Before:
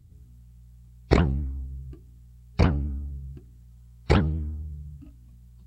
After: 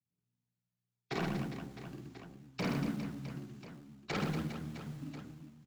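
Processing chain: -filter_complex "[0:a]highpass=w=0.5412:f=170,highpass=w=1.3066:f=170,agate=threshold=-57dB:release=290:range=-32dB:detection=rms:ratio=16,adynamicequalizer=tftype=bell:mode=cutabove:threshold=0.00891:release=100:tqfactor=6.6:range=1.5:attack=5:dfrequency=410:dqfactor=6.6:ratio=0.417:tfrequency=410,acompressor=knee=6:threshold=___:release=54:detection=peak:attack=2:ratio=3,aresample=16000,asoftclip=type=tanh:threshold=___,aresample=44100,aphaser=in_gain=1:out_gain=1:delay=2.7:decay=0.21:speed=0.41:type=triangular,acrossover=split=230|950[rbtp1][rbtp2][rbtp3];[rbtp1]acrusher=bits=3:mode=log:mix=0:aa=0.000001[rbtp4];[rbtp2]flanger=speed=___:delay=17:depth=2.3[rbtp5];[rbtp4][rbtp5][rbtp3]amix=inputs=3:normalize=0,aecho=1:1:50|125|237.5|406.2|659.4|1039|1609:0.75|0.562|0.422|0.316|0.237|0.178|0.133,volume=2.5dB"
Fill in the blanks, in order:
-33dB, -32dB, 1.5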